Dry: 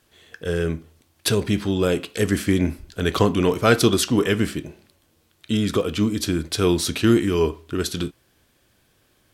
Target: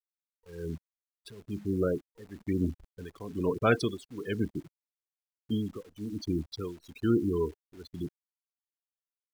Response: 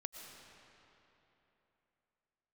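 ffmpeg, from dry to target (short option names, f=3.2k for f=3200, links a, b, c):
-af "afftfilt=real='re*gte(hypot(re,im),0.141)':imag='im*gte(hypot(re,im),0.141)':win_size=1024:overlap=0.75,tremolo=f=1.1:d=0.92,acrusher=bits=9:dc=4:mix=0:aa=0.000001,volume=-7dB"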